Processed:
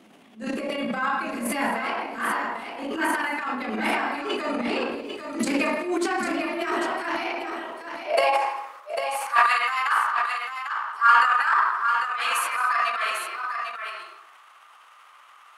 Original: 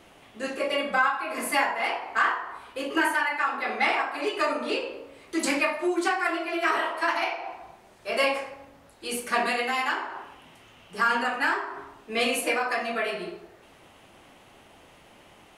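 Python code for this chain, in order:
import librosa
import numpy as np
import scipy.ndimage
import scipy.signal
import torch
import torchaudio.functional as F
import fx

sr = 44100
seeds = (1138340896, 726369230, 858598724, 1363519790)

y = fx.filter_sweep_highpass(x, sr, from_hz=220.0, to_hz=1200.0, start_s=7.19, end_s=8.73, q=6.7)
y = fx.transient(y, sr, attack_db=-12, sustain_db=10)
y = fx.echo_multitap(y, sr, ms=(161, 224, 797), db=(-18.0, -17.5, -7.0))
y = y * 10.0 ** (-3.5 / 20.0)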